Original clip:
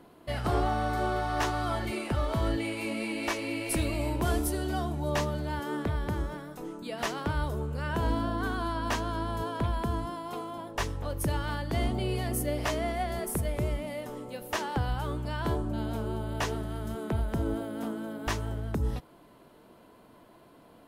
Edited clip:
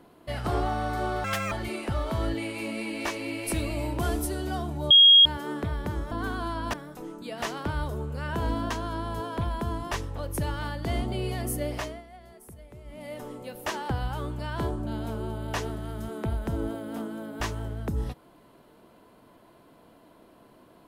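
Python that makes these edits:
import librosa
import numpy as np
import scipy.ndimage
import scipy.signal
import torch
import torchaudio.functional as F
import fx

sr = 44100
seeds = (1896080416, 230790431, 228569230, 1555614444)

y = fx.edit(x, sr, fx.speed_span(start_s=1.24, length_s=0.5, speed=1.82),
    fx.bleep(start_s=5.13, length_s=0.35, hz=3270.0, db=-11.0),
    fx.move(start_s=8.31, length_s=0.62, to_s=6.34),
    fx.cut(start_s=10.14, length_s=0.64),
    fx.fade_down_up(start_s=12.56, length_s=1.48, db=-17.0, fade_s=0.33), tone=tone)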